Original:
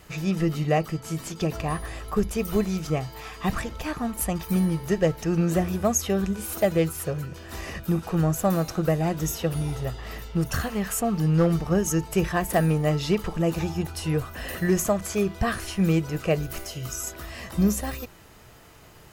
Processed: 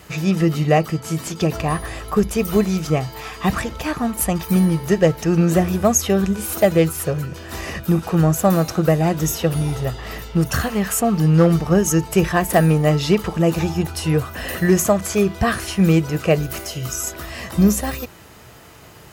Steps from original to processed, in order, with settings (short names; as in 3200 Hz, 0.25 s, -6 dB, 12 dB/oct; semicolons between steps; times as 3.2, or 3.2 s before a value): HPF 59 Hz; gain +7 dB